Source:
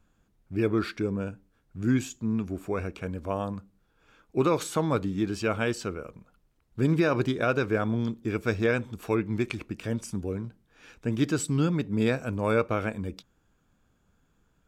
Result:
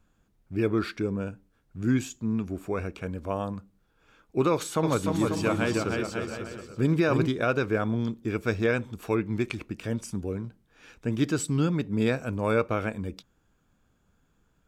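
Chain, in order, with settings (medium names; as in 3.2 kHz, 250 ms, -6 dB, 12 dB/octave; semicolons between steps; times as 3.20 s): 4.52–7.28 s: bouncing-ball echo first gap 310 ms, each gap 0.75×, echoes 5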